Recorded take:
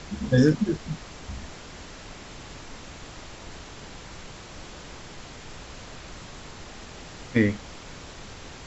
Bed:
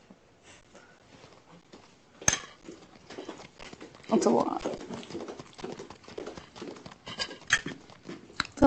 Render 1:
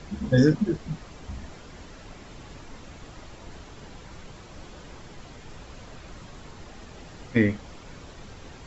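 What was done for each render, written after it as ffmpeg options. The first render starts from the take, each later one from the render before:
-af "afftdn=nr=7:nf=-43"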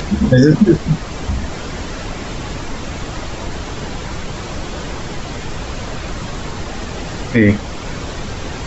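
-filter_complex "[0:a]asplit=2[a][b];[b]acompressor=mode=upward:threshold=-34dB:ratio=2.5,volume=0dB[c];[a][c]amix=inputs=2:normalize=0,alimiter=level_in=11dB:limit=-1dB:release=50:level=0:latency=1"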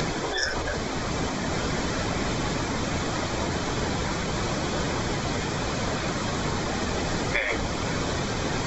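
-af "bandreject=f=2.8k:w=7.6,afftfilt=real='re*lt(hypot(re,im),0.447)':imag='im*lt(hypot(re,im),0.447)':win_size=1024:overlap=0.75"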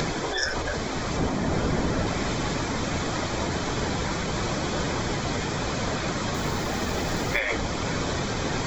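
-filter_complex "[0:a]asettb=1/sr,asplit=3[a][b][c];[a]atrim=end=1.174[d];[b]atrim=start=1.17:end=2.07,asetpts=PTS-STARTPTS,afade=t=in:d=0.004:c=qsin,afade=t=out:st=0.896:d=0.004:c=qsin,tiltshelf=f=1.1k:g=4[e];[c]atrim=start=2.066[f];[d][e]acrossfade=d=0.004:c1=hsin:c2=qsin[g];[g][f]acrossfade=d=0.004:c1=qsin:c2=hsin,asettb=1/sr,asplit=3[h][i][j];[h]atrim=end=6.344[k];[i]atrim=start=6.34:end=7.39,asetpts=PTS-STARTPTS,afade=t=in:d=0.004:c=qsin,afade=t=out:st=1.046:d=0.004:c=qsin,acrusher=bits=8:dc=4:mix=0:aa=0.000001[l];[j]atrim=start=7.386[m];[k][l]acrossfade=d=0.004:c1=hsin:c2=qsin[n];[n][m]acrossfade=d=0.004:c1=qsin:c2=hsin"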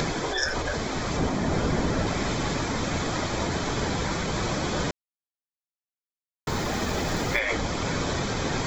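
-filter_complex "[0:a]asplit=3[a][b][c];[a]atrim=end=4.91,asetpts=PTS-STARTPTS,afade=t=out:st=4.906:d=0.004:c=hsin[d];[b]atrim=start=4.91:end=6.47,asetpts=PTS-STARTPTS,volume=0[e];[c]atrim=start=6.47,asetpts=PTS-STARTPTS,afade=t=in:d=0.004:c=hsin[f];[d][e][f]concat=n=3:v=0:a=1"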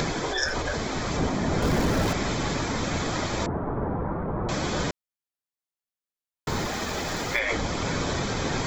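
-filter_complex "[0:a]asettb=1/sr,asplit=3[a][b][c];[a]atrim=end=1.624[d];[b]atrim=start=1.62:end=2.13,asetpts=PTS-STARTPTS,afade=t=in:d=0.004:c=qsin,afade=t=out:st=0.506:d=0.004:c=qsin,aeval=exprs='val(0)+0.5*0.0335*sgn(val(0))':c=same[e];[c]atrim=start=2.126[f];[d][e]acrossfade=d=0.004:c1=hsin:c2=qsin[g];[g][f]acrossfade=d=0.004:c1=qsin:c2=hsin,asettb=1/sr,asplit=3[h][i][j];[h]atrim=end=3.464[k];[i]atrim=start=3.46:end=4.49,asetpts=PTS-STARTPTS,afade=t=in:d=0.004:c=qsin,afade=t=out:st=1.026:d=0.004:c=qsin,lowpass=f=1.2k:w=0.5412,lowpass=f=1.2k:w=1.3066[l];[j]atrim=start=4.486[m];[k][l]acrossfade=d=0.004:c1=hsin:c2=qsin[n];[n][m]acrossfade=d=0.004:c1=qsin:c2=hsin,asettb=1/sr,asplit=3[o][p][q];[o]atrim=end=6.664[r];[p]atrim=start=6.66:end=7.39,asetpts=PTS-STARTPTS,afade=t=in:d=0.004:c=qsin,afade=t=out:st=0.726:d=0.004:c=qsin,lowshelf=f=430:g=-6[s];[q]atrim=start=7.386[t];[r][s]acrossfade=d=0.004:c1=hsin:c2=qsin[u];[u][t]acrossfade=d=0.004:c1=qsin:c2=hsin"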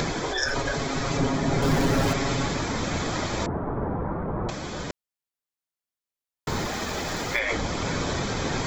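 -filter_complex "[0:a]asettb=1/sr,asplit=3[a][b][c];[a]atrim=end=0.464[d];[b]atrim=start=0.46:end=2.46,asetpts=PTS-STARTPTS,afade=t=in:d=0.004:c=qsin,afade=t=out:st=1.996:d=0.004:c=qsin,aecho=1:1:7.3:0.65,atrim=end_sample=88200[e];[c]atrim=start=2.456[f];[d][e]acrossfade=d=0.004:c1=hsin:c2=qsin[g];[g][f]acrossfade=d=0.004:c1=qsin:c2=hsin,asplit=3[h][i][j];[h]atrim=end=4.502[k];[i]atrim=start=4.498:end=4.902,asetpts=PTS-STARTPTS,volume=-6dB[l];[j]atrim=start=4.898[m];[k][l]acrossfade=d=0.004:c1=hsin:c2=hsin[n];[n][m]acrossfade=d=0.004:c1=hsin:c2=hsin"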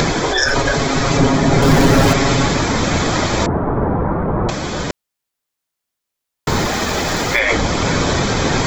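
-af "volume=11dB,alimiter=limit=-2dB:level=0:latency=1"

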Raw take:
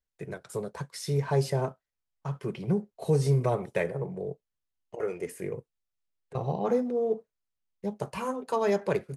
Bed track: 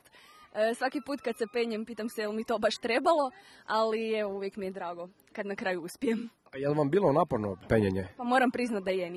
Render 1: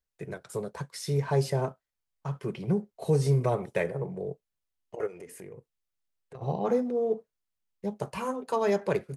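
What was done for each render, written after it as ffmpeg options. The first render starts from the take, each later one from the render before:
-filter_complex "[0:a]asplit=3[a][b][c];[a]afade=t=out:st=5.06:d=0.02[d];[b]acompressor=threshold=-41dB:ratio=6:attack=3.2:release=140:knee=1:detection=peak,afade=t=in:st=5.06:d=0.02,afade=t=out:st=6.41:d=0.02[e];[c]afade=t=in:st=6.41:d=0.02[f];[d][e][f]amix=inputs=3:normalize=0"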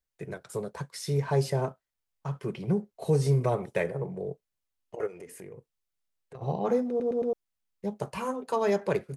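-filter_complex "[0:a]asplit=5[a][b][c][d][e];[a]atrim=end=7.002[f];[b]atrim=start=6.888:end=7.002[g];[c]atrim=start=6.888:end=7.002[h];[d]atrim=start=6.888:end=7.002[i];[e]atrim=start=7.328[j];[f][g]acrossfade=d=0.004:c1=hsin:c2=hsin[k];[k][h]acrossfade=d=0.004:c1=hsin:c2=hsin[l];[l][i]acrossfade=d=0.004:c1=hsin:c2=hsin[m];[m][j]acrossfade=d=0.004:c1=hsin:c2=hsin"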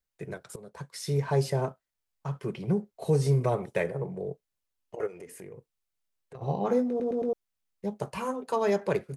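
-filter_complex "[0:a]asettb=1/sr,asplit=3[a][b][c];[a]atrim=end=6.454[d];[b]atrim=start=6.45:end=7.29,asetpts=PTS-STARTPTS,afade=t=in:d=0.004:c=qsin,afade=t=out:st=0.836:d=0.004:c=qsin,asplit=2[e][f];[f]adelay=20,volume=-8.5dB[g];[e][g]amix=inputs=2:normalize=0,atrim=end_sample=37044[h];[c]atrim=start=7.286[i];[d][h]acrossfade=d=0.004:c1=hsin:c2=qsin[j];[j][i]acrossfade=d=0.004:c1=qsin:c2=hsin,asplit=2[k][l];[k]atrim=end=0.56,asetpts=PTS-STARTPTS,afade=t=out:st=0.556:d=0.004:c=hsin:silence=0.11885[m];[l]atrim=start=0.56,asetpts=PTS-STARTPTS,afade=t=in:d=0.44:silence=0.11885[n];[m][n]concat=n=2:v=0:a=1"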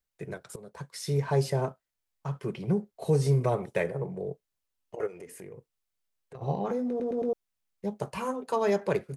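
-filter_complex "[0:a]asettb=1/sr,asplit=3[a][b][c];[a]atrim=end=6.544[d];[b]atrim=start=6.54:end=7.18,asetpts=PTS-STARTPTS,afade=t=in:d=0.004:c=qsin,afade=t=out:st=0.636:d=0.004:c=qsin,acompressor=threshold=-26dB:ratio=6:attack=3.2:release=140:knee=1:detection=peak[e];[c]atrim=start=7.176[f];[d][e]acrossfade=d=0.004:c1=hsin:c2=qsin[g];[g][f]acrossfade=d=0.004:c1=qsin:c2=hsin"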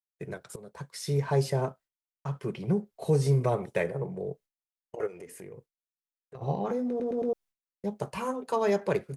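-af "agate=range=-33dB:threshold=-48dB:ratio=3:detection=peak"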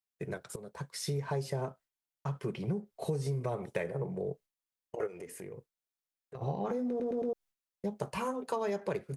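-af "acompressor=threshold=-30dB:ratio=6"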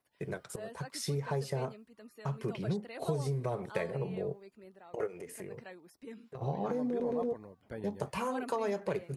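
-filter_complex "[1:a]volume=-18dB[a];[0:a][a]amix=inputs=2:normalize=0"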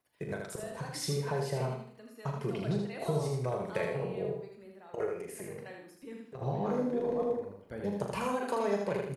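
-filter_complex "[0:a]asplit=2[a][b];[b]adelay=40,volume=-7.5dB[c];[a][c]amix=inputs=2:normalize=0,aecho=1:1:79|158|237|316|395:0.631|0.227|0.0818|0.0294|0.0106"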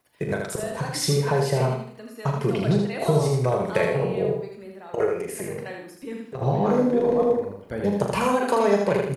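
-af "volume=11dB"

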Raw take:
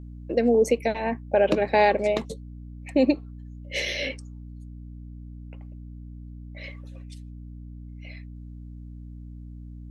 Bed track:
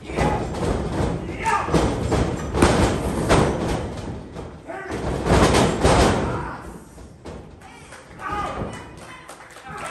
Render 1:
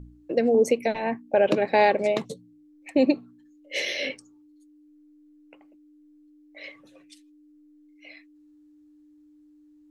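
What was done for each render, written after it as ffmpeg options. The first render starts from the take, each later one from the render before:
-af "bandreject=f=60:t=h:w=4,bandreject=f=120:t=h:w=4,bandreject=f=180:t=h:w=4,bandreject=f=240:t=h:w=4"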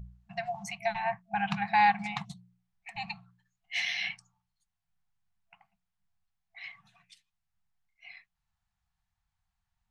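-af "aemphasis=mode=reproduction:type=50kf,afftfilt=real='re*(1-between(b*sr/4096,210,670))':imag='im*(1-between(b*sr/4096,210,670))':win_size=4096:overlap=0.75"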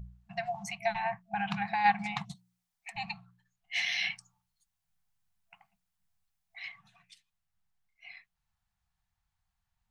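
-filter_complex "[0:a]asplit=3[a][b][c];[a]afade=t=out:st=1.06:d=0.02[d];[b]acompressor=threshold=-27dB:ratio=6:attack=3.2:release=140:knee=1:detection=peak,afade=t=in:st=1.06:d=0.02,afade=t=out:st=1.84:d=0.02[e];[c]afade=t=in:st=1.84:d=0.02[f];[d][e][f]amix=inputs=3:normalize=0,asplit=3[g][h][i];[g]afade=t=out:st=2.34:d=0.02[j];[h]bass=f=250:g=-14,treble=f=4k:g=8,afade=t=in:st=2.34:d=0.02,afade=t=out:st=2.91:d=0.02[k];[i]afade=t=in:st=2.91:d=0.02[l];[j][k][l]amix=inputs=3:normalize=0,asettb=1/sr,asplit=3[m][n][o];[m]atrim=end=3.924[p];[n]atrim=start=3.92:end=6.69,asetpts=PTS-STARTPTS,afade=t=in:d=0.004:c=qsin,afade=t=out:st=2.766:d=0.004:c=qsin,highshelf=f=4.9k:g=7.5[q];[o]atrim=start=6.686[r];[p][q]acrossfade=d=0.004:c1=hsin:c2=qsin[s];[s][r]acrossfade=d=0.004:c1=qsin:c2=hsin"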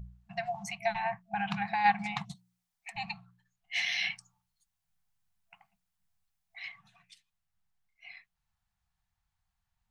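-af anull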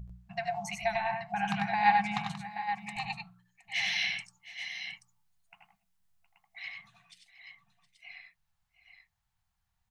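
-af "aecho=1:1:77|95|101|716|830|831:0.282|0.562|0.112|0.141|0.299|0.133"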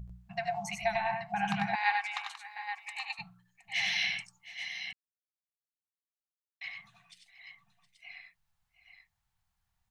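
-filter_complex "[0:a]asettb=1/sr,asplit=3[a][b][c];[a]atrim=end=1.754[d];[b]atrim=start=1.75:end=3.19,asetpts=PTS-STARTPTS,afade=t=in:d=0.004:c=qsin,afade=t=out:st=1.436:d=0.004:c=qsin,highpass=f=1k:w=0.5412,highpass=f=1k:w=1.3066[e];[c]atrim=start=3.186[f];[d][e]acrossfade=d=0.004:c1=hsin:c2=qsin[g];[g][f]acrossfade=d=0.004:c1=qsin:c2=hsin,asplit=3[h][i][j];[h]atrim=end=4.93,asetpts=PTS-STARTPTS,afade=t=out:st=4.926:d=0.004:c=hsin[k];[i]atrim=start=4.93:end=6.61,asetpts=PTS-STARTPTS,volume=0[l];[j]atrim=start=6.61,asetpts=PTS-STARTPTS,afade=t=in:d=0.004:c=hsin[m];[k][l][m]concat=n=3:v=0:a=1"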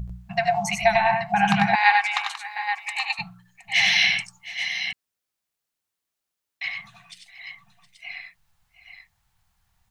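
-af "volume=12dB,alimiter=limit=-3dB:level=0:latency=1"

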